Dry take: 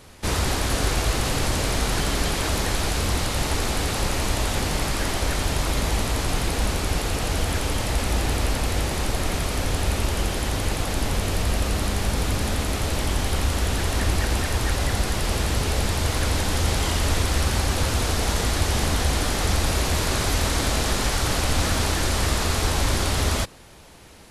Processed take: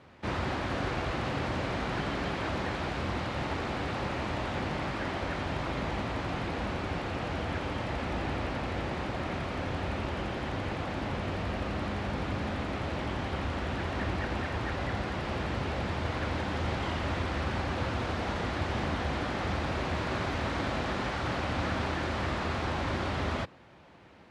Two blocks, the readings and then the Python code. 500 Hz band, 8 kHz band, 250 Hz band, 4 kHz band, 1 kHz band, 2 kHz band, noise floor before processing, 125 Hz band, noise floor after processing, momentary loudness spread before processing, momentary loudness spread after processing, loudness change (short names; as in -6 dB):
-6.0 dB, -25.5 dB, -5.0 dB, -13.5 dB, -5.0 dB, -6.5 dB, -28 dBFS, -9.5 dB, -36 dBFS, 3 LU, 2 LU, -9.0 dB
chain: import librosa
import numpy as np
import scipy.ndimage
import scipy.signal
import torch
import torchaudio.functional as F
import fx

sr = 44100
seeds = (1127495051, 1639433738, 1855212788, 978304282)

y = fx.bandpass_edges(x, sr, low_hz=100.0, high_hz=2400.0)
y = fx.notch(y, sr, hz=440.0, q=12.0)
y = y * 10.0 ** (-5.0 / 20.0)